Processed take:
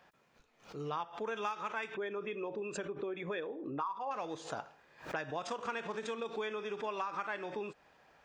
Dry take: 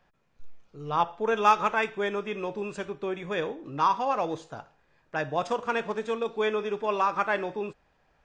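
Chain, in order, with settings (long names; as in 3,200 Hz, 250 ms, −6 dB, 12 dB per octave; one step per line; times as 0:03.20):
0:01.94–0:04.11: spectral envelope exaggerated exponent 1.5
dynamic equaliser 590 Hz, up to −4 dB, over −36 dBFS, Q 1.1
downward compressor 12 to 1, threshold −39 dBFS, peak gain reduction 23 dB
high-pass filter 290 Hz 6 dB per octave
background raised ahead of every attack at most 150 dB per second
level +5 dB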